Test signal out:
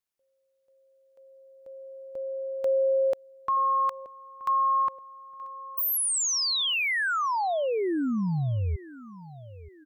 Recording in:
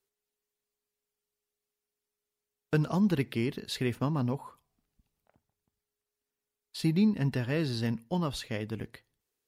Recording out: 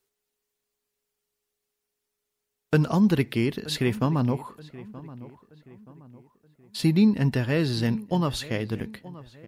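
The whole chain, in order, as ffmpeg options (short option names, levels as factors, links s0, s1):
-filter_complex "[0:a]asplit=2[s0][s1];[s1]adelay=926,lowpass=f=2300:p=1,volume=0.126,asplit=2[s2][s3];[s3]adelay=926,lowpass=f=2300:p=1,volume=0.43,asplit=2[s4][s5];[s5]adelay=926,lowpass=f=2300:p=1,volume=0.43,asplit=2[s6][s7];[s7]adelay=926,lowpass=f=2300:p=1,volume=0.43[s8];[s0][s2][s4][s6][s8]amix=inputs=5:normalize=0,volume=2"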